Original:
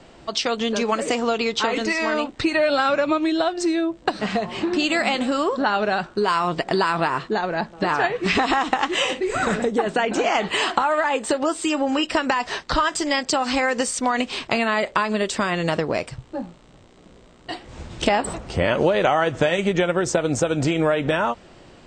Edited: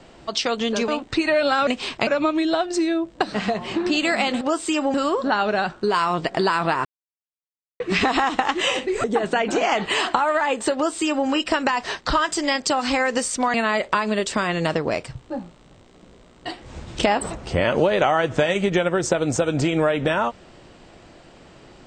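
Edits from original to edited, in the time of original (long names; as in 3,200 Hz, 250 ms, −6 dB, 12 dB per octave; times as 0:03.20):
0:00.88–0:02.15: remove
0:07.19–0:08.14: silence
0:09.38–0:09.67: remove
0:11.37–0:11.90: duplicate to 0:05.28
0:14.17–0:14.57: move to 0:02.94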